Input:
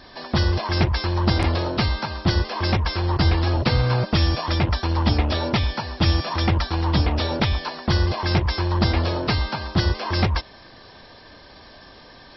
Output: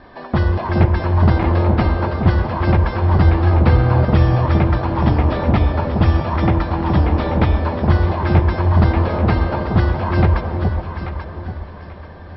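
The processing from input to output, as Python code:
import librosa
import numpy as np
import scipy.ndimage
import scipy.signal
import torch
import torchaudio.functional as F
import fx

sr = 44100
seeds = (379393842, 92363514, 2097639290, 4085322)

y = scipy.signal.sosfilt(scipy.signal.butter(2, 1700.0, 'lowpass', fs=sr, output='sos'), x)
y = fx.echo_alternate(y, sr, ms=418, hz=810.0, feedback_pct=55, wet_db=-3.0)
y = fx.rev_freeverb(y, sr, rt60_s=4.6, hf_ratio=0.45, predelay_ms=30, drr_db=10.0)
y = y * librosa.db_to_amplitude(4.0)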